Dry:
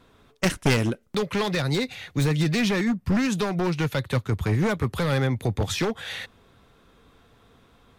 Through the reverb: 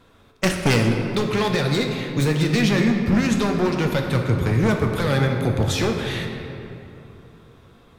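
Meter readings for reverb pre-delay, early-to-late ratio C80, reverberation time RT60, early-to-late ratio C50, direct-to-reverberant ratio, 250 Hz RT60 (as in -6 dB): 7 ms, 5.0 dB, 3.0 s, 4.0 dB, 2.5 dB, 3.6 s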